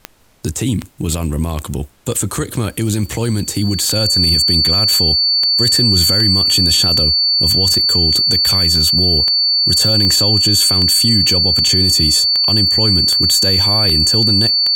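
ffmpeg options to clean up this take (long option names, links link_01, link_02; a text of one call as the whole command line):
ffmpeg -i in.wav -af "adeclick=threshold=4,bandreject=frequency=4500:width=30,agate=range=-21dB:threshold=-15dB" out.wav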